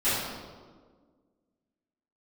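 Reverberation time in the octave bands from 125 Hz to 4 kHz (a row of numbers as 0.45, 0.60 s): 1.6, 2.1, 1.8, 1.4, 1.0, 1.0 s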